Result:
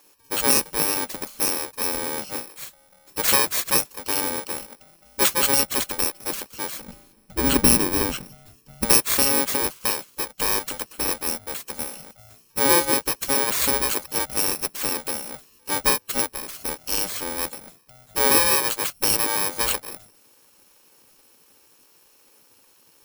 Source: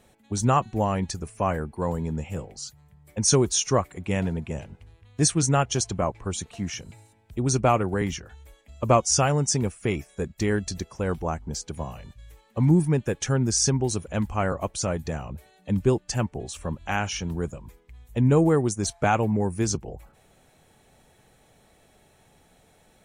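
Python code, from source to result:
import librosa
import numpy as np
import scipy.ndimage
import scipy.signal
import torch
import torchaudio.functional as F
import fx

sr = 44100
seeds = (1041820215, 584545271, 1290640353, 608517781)

y = fx.bit_reversed(x, sr, seeds[0], block=64)
y = fx.bass_treble(y, sr, bass_db=11, treble_db=-3, at=(6.8, 8.85))
y = fx.spec_gate(y, sr, threshold_db=-10, keep='weak')
y = y * librosa.db_to_amplitude(6.0)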